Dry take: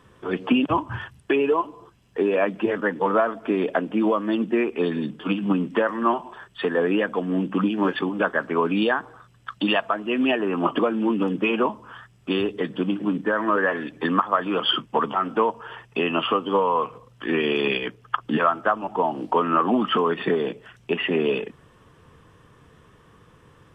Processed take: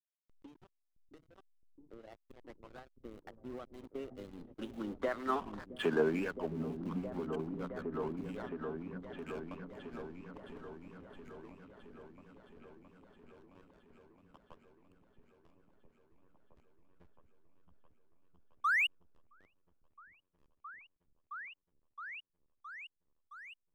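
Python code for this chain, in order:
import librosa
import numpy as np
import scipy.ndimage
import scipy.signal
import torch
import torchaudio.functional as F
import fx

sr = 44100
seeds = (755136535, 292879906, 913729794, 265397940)

p1 = fx.doppler_pass(x, sr, speed_mps=44, closest_m=12.0, pass_at_s=5.68)
p2 = fx.schmitt(p1, sr, flips_db=-35.5)
p3 = p1 + (p2 * librosa.db_to_amplitude(-11.0))
p4 = fx.harmonic_tremolo(p3, sr, hz=2.0, depth_pct=50, crossover_hz=1600.0)
p5 = fx.spec_paint(p4, sr, seeds[0], shape='rise', start_s=18.64, length_s=0.23, low_hz=1100.0, high_hz=3000.0, level_db=-25.0)
p6 = fx.backlash(p5, sr, play_db=-39.0)
p7 = p6 + fx.echo_opening(p6, sr, ms=667, hz=200, octaves=1, feedback_pct=70, wet_db=-3, dry=0)
y = p7 * librosa.db_to_amplitude(-4.0)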